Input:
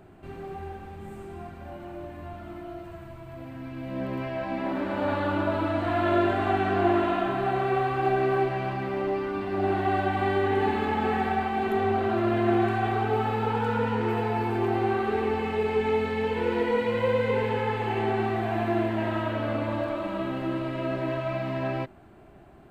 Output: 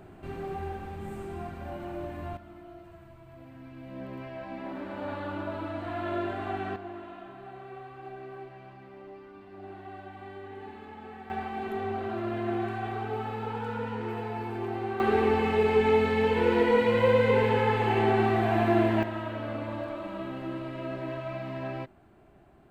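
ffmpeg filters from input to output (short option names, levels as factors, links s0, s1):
-af "asetnsamples=n=441:p=0,asendcmd='2.37 volume volume -8.5dB;6.76 volume volume -18.5dB;11.3 volume volume -7.5dB;15 volume volume 2.5dB;19.03 volume volume -6dB',volume=1.26"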